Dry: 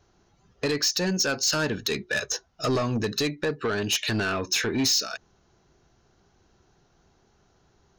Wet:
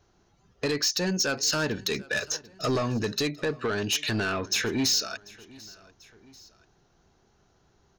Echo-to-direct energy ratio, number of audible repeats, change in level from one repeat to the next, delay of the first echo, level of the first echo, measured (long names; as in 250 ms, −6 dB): −21.5 dB, 2, −5.0 dB, 741 ms, −22.5 dB